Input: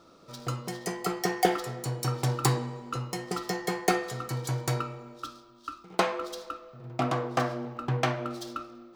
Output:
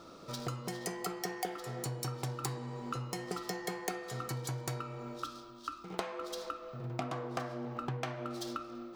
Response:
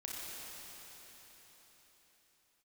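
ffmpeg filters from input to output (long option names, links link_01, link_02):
-af "acompressor=threshold=-40dB:ratio=6,volume=4dB"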